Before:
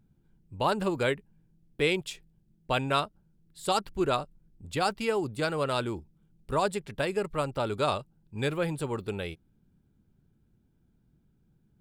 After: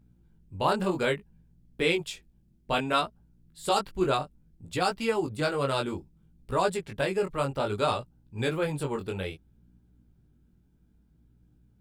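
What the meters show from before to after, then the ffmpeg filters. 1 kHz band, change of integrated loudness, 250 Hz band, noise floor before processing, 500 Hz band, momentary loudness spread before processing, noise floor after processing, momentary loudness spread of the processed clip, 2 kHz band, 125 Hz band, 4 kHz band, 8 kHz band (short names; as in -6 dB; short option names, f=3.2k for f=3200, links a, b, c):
+1.0 dB, +1.0 dB, +1.0 dB, -69 dBFS, +1.0 dB, 12 LU, -64 dBFS, 11 LU, +1.0 dB, +0.5 dB, +1.0 dB, +1.0 dB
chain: -af "aeval=exprs='val(0)+0.000562*(sin(2*PI*60*n/s)+sin(2*PI*2*60*n/s)/2+sin(2*PI*3*60*n/s)/3+sin(2*PI*4*60*n/s)/4+sin(2*PI*5*60*n/s)/5)':c=same,flanger=delay=16.5:depth=5.5:speed=0.61,volume=4dB"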